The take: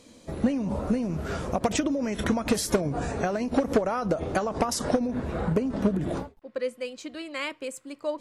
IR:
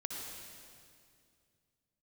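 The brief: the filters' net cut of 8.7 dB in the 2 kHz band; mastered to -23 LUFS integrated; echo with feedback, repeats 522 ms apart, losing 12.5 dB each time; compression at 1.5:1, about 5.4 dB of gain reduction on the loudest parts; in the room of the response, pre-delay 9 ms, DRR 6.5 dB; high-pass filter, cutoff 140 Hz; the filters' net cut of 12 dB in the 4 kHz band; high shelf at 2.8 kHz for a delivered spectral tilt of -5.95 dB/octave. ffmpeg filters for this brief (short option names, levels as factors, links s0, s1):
-filter_complex "[0:a]highpass=140,equalizer=f=2000:t=o:g=-7.5,highshelf=f=2800:g=-6,equalizer=f=4000:t=o:g=-9,acompressor=threshold=0.02:ratio=1.5,aecho=1:1:522|1044|1566:0.237|0.0569|0.0137,asplit=2[s0][s1];[1:a]atrim=start_sample=2205,adelay=9[s2];[s1][s2]afir=irnorm=-1:irlink=0,volume=0.447[s3];[s0][s3]amix=inputs=2:normalize=0,volume=2.99"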